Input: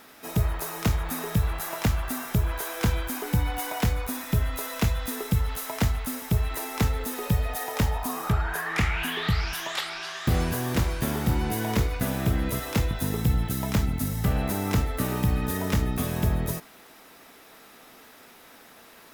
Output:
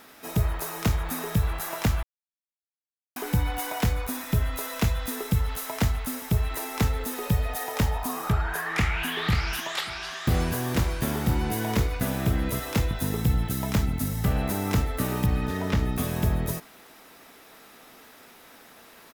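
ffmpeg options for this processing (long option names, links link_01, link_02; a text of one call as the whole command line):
ffmpeg -i in.wav -filter_complex "[0:a]asplit=2[link_01][link_02];[link_02]afade=type=in:start_time=8.63:duration=0.01,afade=type=out:start_time=9.06:duration=0.01,aecho=0:1:540|1080|1620:0.446684|0.0893367|0.0178673[link_03];[link_01][link_03]amix=inputs=2:normalize=0,asettb=1/sr,asplit=3[link_04][link_05][link_06];[link_04]atrim=end=15.264[link_07];[link_05]atrim=start=15.26:end=15.89,asetpts=PTS-STARTPTS,afade=type=in:duration=0.004:curve=qsin,afade=type=out:start_time=0.626:duration=0.004:curve=qsin,acrossover=split=5400[link_08][link_09];[link_09]acompressor=threshold=-49dB:ratio=4:attack=1:release=60[link_10];[link_08][link_10]amix=inputs=2:normalize=0[link_11];[link_06]atrim=start=15.886[link_12];[link_07][link_11]acrossfade=duration=0.004:curve1=hsin:curve2=qsin[link_13];[link_13][link_12]acrossfade=duration=0.004:curve1=qsin:curve2=hsin,asplit=3[link_14][link_15][link_16];[link_14]atrim=end=2.03,asetpts=PTS-STARTPTS,afade=type=out:start_time=2.026:duration=0.004:curve=hsin[link_17];[link_15]atrim=start=2.03:end=3.16,asetpts=PTS-STARTPTS,volume=0[link_18];[link_16]atrim=start=3.16,asetpts=PTS-STARTPTS,afade=type=in:duration=0.004:curve=hsin[link_19];[link_17][link_18][link_19]concat=n=3:v=0:a=1" out.wav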